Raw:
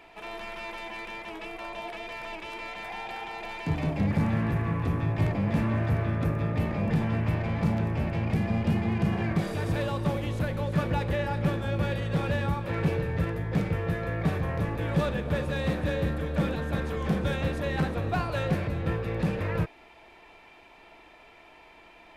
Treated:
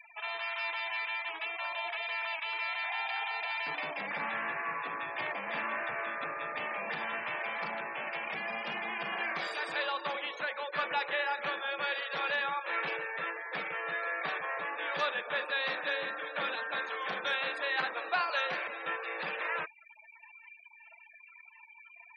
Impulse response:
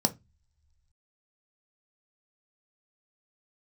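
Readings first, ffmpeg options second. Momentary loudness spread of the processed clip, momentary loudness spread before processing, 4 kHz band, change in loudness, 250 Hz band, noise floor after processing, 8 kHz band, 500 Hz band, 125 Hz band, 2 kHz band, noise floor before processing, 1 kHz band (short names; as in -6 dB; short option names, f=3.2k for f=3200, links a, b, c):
5 LU, 10 LU, +4.0 dB, -5.0 dB, -22.5 dB, -56 dBFS, n/a, -7.5 dB, -33.5 dB, +5.0 dB, -53 dBFS, +1.0 dB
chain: -af "acontrast=80,highpass=1.1k,afftfilt=real='re*gte(hypot(re,im),0.0126)':imag='im*gte(hypot(re,im),0.0126)':win_size=1024:overlap=0.75,volume=-1.5dB"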